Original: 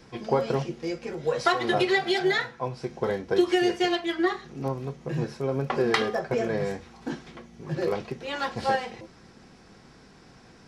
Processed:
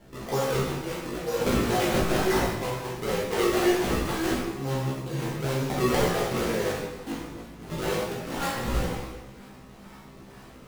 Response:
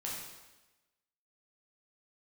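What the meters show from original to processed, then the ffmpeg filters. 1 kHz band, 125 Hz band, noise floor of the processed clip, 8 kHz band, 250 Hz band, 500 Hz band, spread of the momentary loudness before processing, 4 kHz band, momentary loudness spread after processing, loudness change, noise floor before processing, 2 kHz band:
−1.0 dB, +3.5 dB, −48 dBFS, +10.0 dB, +0.5 dB, −0.5 dB, 12 LU, −1.0 dB, 13 LU, 0.0 dB, −53 dBFS, −2.5 dB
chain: -filter_complex "[0:a]asplit=2[link_01][link_02];[link_02]aeval=exprs='0.0596*(abs(mod(val(0)/0.0596+3,4)-2)-1)':channel_layout=same,volume=-10.5dB[link_03];[link_01][link_03]amix=inputs=2:normalize=0,highshelf=frequency=3800:gain=12,acrusher=samples=33:mix=1:aa=0.000001:lfo=1:lforange=52.8:lforate=2.1,areverse,acompressor=mode=upward:threshold=-40dB:ratio=2.5,areverse[link_04];[1:a]atrim=start_sample=2205[link_05];[link_04][link_05]afir=irnorm=-1:irlink=0,flanger=delay=15:depth=3.2:speed=0.2"

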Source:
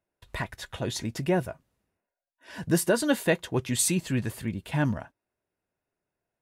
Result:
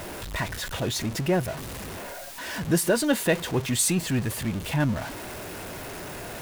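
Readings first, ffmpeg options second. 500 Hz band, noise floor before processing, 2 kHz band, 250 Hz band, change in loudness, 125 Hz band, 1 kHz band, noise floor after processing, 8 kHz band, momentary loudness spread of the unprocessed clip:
+1.5 dB, below −85 dBFS, +3.0 dB, +2.0 dB, +0.5 dB, +2.5 dB, +3.0 dB, −38 dBFS, +3.0 dB, 12 LU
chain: -af "aeval=exprs='val(0)+0.5*0.0316*sgn(val(0))':channel_layout=same"

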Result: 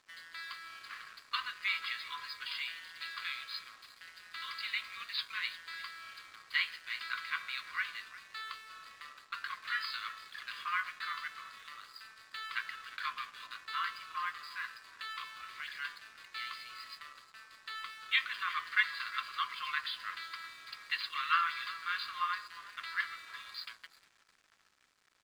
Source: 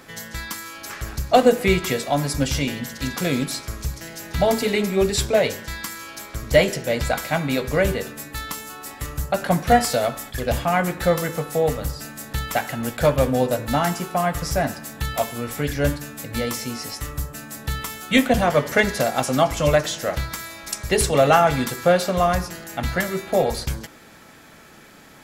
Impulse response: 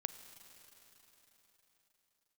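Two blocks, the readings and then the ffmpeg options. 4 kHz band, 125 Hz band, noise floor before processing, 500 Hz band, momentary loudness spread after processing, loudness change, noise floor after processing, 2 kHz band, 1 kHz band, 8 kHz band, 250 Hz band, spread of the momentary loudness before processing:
−9.5 dB, below −40 dB, −46 dBFS, below −40 dB, 15 LU, −16.0 dB, −67 dBFS, −8.5 dB, −16.0 dB, −29.0 dB, below −40 dB, 14 LU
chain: -filter_complex "[0:a]afftfilt=real='re*between(b*sr/4096,1000,5000)':imag='im*between(b*sr/4096,1000,5000)':win_size=4096:overlap=0.75,asplit=4[link_01][link_02][link_03][link_04];[link_02]adelay=355,afreqshift=-35,volume=-16dB[link_05];[link_03]adelay=710,afreqshift=-70,volume=-25.1dB[link_06];[link_04]adelay=1065,afreqshift=-105,volume=-34.2dB[link_07];[link_01][link_05][link_06][link_07]amix=inputs=4:normalize=0,aeval=exprs='sgn(val(0))*max(abs(val(0))-0.00422,0)':channel_layout=same,volume=-8dB"

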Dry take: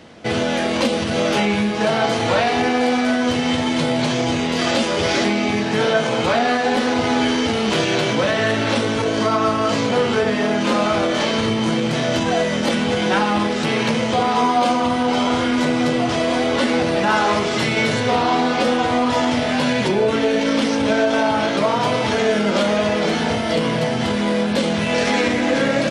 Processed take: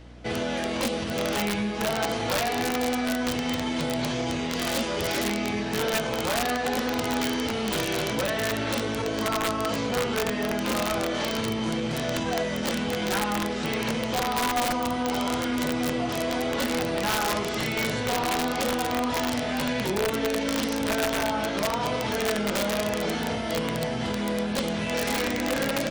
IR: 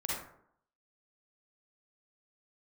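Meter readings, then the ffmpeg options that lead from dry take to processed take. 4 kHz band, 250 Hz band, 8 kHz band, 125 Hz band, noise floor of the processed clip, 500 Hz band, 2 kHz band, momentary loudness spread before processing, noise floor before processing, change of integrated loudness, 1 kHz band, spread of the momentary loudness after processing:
−7.0 dB, −9.0 dB, −2.5 dB, −8.0 dB, −29 dBFS, −9.0 dB, −8.0 dB, 2 LU, −21 dBFS, −8.0 dB, −9.0 dB, 2 LU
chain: -af "aeval=exprs='(mod(2.99*val(0)+1,2)-1)/2.99':channel_layout=same,aeval=exprs='val(0)+0.0141*(sin(2*PI*60*n/s)+sin(2*PI*2*60*n/s)/2+sin(2*PI*3*60*n/s)/3+sin(2*PI*4*60*n/s)/4+sin(2*PI*5*60*n/s)/5)':channel_layout=same,volume=-8.5dB"

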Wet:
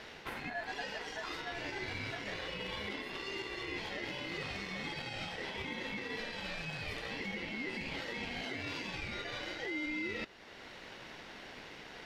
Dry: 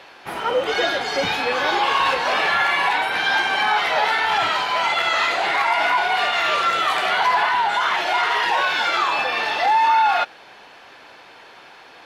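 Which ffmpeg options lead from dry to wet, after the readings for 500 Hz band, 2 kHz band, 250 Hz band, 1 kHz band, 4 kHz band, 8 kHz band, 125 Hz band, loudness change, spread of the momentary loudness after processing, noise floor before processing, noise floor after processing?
−18.5 dB, −19.5 dB, −6.0 dB, −29.0 dB, −19.0 dB, −17.0 dB, can't be measured, −21.0 dB, 10 LU, −45 dBFS, −51 dBFS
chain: -af "lowshelf=frequency=310:gain=11.5,areverse,acompressor=threshold=-28dB:ratio=5,areverse,aeval=exprs='val(0)*sin(2*PI*1200*n/s)':channel_layout=same,alimiter=level_in=3dB:limit=-24dB:level=0:latency=1:release=471,volume=-3dB,aeval=exprs='0.0447*(cos(1*acos(clip(val(0)/0.0447,-1,1)))-cos(1*PI/2))+0.00282*(cos(3*acos(clip(val(0)/0.0447,-1,1)))-cos(3*PI/2))+0.000398*(cos(7*acos(clip(val(0)/0.0447,-1,1)))-cos(7*PI/2))':channel_layout=same,volume=-1.5dB"

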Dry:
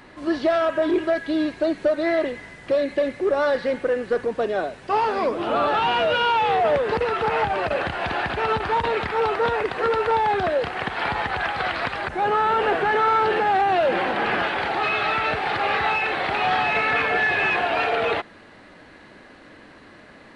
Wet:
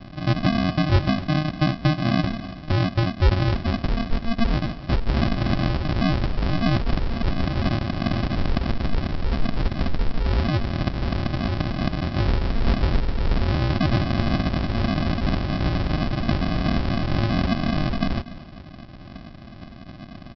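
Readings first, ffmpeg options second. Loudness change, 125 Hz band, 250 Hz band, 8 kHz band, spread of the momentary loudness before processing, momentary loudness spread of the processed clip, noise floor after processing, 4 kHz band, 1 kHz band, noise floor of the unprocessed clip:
−2.0 dB, +17.5 dB, +6.0 dB, can't be measured, 6 LU, 7 LU, −40 dBFS, −1.5 dB, −10.0 dB, −47 dBFS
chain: -filter_complex "[0:a]aecho=1:1:4.8:0.5,acrossover=split=410|3000[link_01][link_02][link_03];[link_02]acompressor=threshold=-30dB:ratio=6[link_04];[link_01][link_04][link_03]amix=inputs=3:normalize=0,aresample=11025,acrusher=samples=24:mix=1:aa=0.000001,aresample=44100,aecho=1:1:252:0.133,volume=6dB"

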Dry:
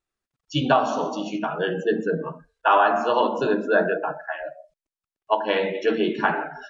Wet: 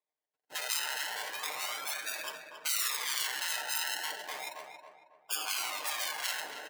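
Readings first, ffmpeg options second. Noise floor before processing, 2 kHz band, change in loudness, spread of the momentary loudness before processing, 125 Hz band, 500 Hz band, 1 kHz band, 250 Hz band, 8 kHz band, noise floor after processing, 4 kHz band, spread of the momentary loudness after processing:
below −85 dBFS, −8.5 dB, −10.5 dB, 10 LU, below −35 dB, −27.0 dB, −18.0 dB, −35.0 dB, can't be measured, below −85 dBFS, 0.0 dB, 10 LU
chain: -filter_complex "[0:a]acrusher=samples=30:mix=1:aa=0.000001:lfo=1:lforange=18:lforate=0.34,afftfilt=real='re*lt(hypot(re,im),0.1)':imag='im*lt(hypot(re,im),0.1)':win_size=1024:overlap=0.75,highpass=670,aecho=1:1:6.6:0.44,asplit=2[link_01][link_02];[link_02]adelay=274,lowpass=frequency=1800:poles=1,volume=-5dB,asplit=2[link_03][link_04];[link_04]adelay=274,lowpass=frequency=1800:poles=1,volume=0.42,asplit=2[link_05][link_06];[link_06]adelay=274,lowpass=frequency=1800:poles=1,volume=0.42,asplit=2[link_07][link_08];[link_08]adelay=274,lowpass=frequency=1800:poles=1,volume=0.42,asplit=2[link_09][link_10];[link_10]adelay=274,lowpass=frequency=1800:poles=1,volume=0.42[link_11];[link_03][link_05][link_07][link_09][link_11]amix=inputs=5:normalize=0[link_12];[link_01][link_12]amix=inputs=2:normalize=0,volume=-3dB"

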